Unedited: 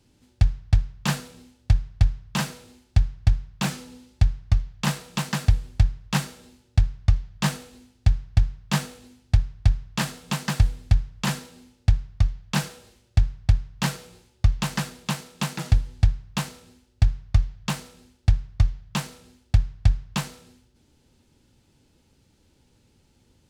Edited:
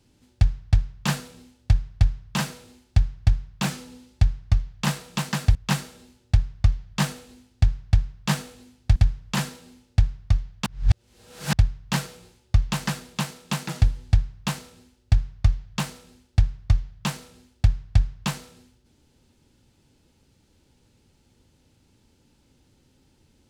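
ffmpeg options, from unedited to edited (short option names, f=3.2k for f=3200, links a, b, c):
-filter_complex "[0:a]asplit=5[a][b][c][d][e];[a]atrim=end=5.552[f];[b]atrim=start=5.988:end=9.402[g];[c]atrim=start=10.858:end=12.562[h];[d]atrim=start=12.558:end=13.432,asetpts=PTS-STARTPTS,areverse[i];[e]atrim=start=13.428[j];[f][g]acrossfade=d=0.004:c1=hsin:c2=hsin[k];[k][h]acrossfade=d=0.004:c1=hsin:c2=hsin[l];[l][i]acrossfade=d=0.004:c1=hsin:c2=hsin[m];[m][j]acrossfade=d=0.004:c1=hsin:c2=hsin"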